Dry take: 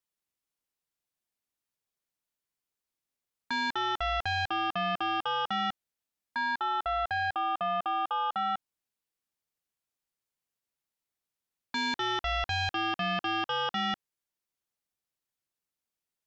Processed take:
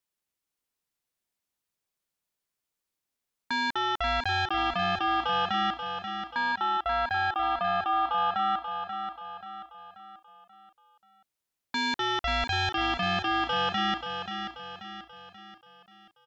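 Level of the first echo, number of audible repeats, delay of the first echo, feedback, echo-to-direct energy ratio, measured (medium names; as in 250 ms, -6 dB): -7.5 dB, 5, 534 ms, 46%, -6.5 dB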